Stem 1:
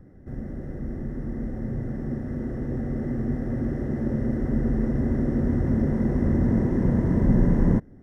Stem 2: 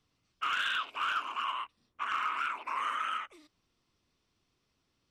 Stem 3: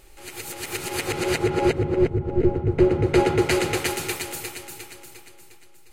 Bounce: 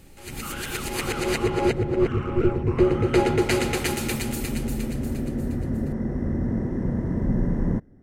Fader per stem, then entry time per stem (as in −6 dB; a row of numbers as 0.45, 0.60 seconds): −4.0, −6.5, −1.5 decibels; 0.00, 0.00, 0.00 seconds